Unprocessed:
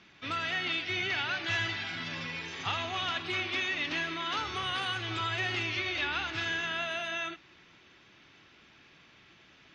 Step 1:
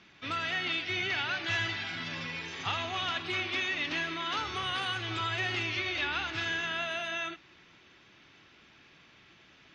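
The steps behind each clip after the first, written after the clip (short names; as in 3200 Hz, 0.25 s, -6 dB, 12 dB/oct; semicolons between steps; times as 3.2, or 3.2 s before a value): nothing audible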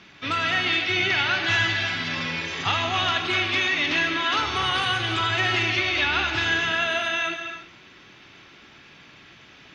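non-linear reverb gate 0.36 s flat, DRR 5.5 dB; gain +8.5 dB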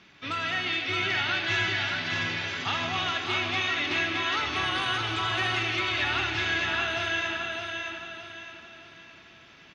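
feedback echo 0.618 s, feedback 38%, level -4 dB; gain -6 dB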